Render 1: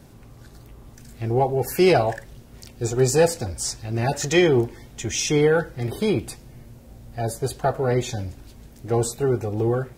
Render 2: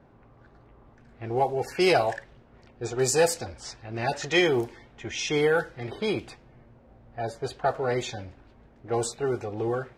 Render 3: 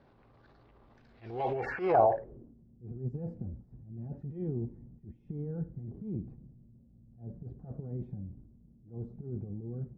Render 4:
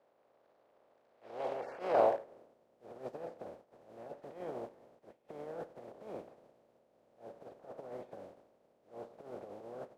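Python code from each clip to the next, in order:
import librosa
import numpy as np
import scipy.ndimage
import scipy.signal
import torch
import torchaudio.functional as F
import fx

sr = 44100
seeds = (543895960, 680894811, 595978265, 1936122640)

y1 = fx.env_lowpass(x, sr, base_hz=1300.0, full_db=-14.0)
y1 = fx.low_shelf(y1, sr, hz=360.0, db=-12.0)
y2 = fx.transient(y1, sr, attack_db=-11, sustain_db=8)
y2 = fx.filter_sweep_lowpass(y2, sr, from_hz=4400.0, to_hz=190.0, start_s=1.29, end_s=2.65, q=2.4)
y2 = F.gain(torch.from_numpy(y2), -6.5).numpy()
y3 = fx.spec_flatten(y2, sr, power=0.3)
y3 = fx.bandpass_q(y3, sr, hz=570.0, q=2.9)
y3 = F.gain(torch.from_numpy(y3), 2.0).numpy()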